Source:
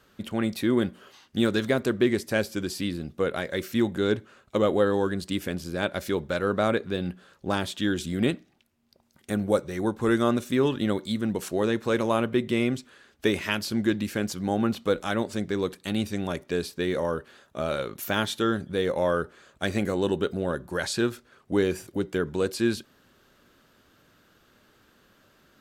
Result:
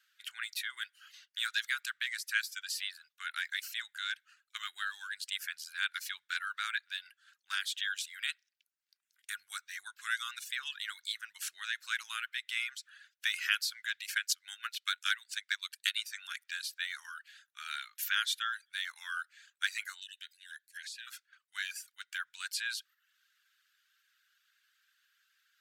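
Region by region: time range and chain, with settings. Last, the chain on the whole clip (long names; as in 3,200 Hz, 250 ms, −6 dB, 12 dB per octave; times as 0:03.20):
0:14.06–0:16.00: high-pass filter 1,300 Hz + transient designer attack +9 dB, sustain −5 dB
0:20.00–0:21.07: elliptic high-pass filter 1,700 Hz + downward compressor, threshold −41 dBFS
whole clip: reverb reduction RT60 0.5 s; elliptic high-pass filter 1,500 Hz, stop band 60 dB; noise gate −58 dBFS, range −7 dB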